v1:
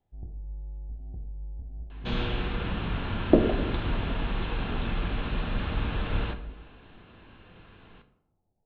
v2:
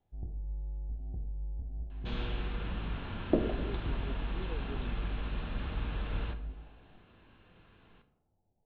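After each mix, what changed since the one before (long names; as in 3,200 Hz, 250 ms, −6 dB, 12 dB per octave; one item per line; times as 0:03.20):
second sound −8.5 dB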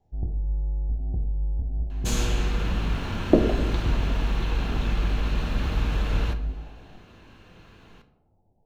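first sound +10.5 dB
second sound +9.0 dB
master: remove elliptic low-pass filter 3,600 Hz, stop band 80 dB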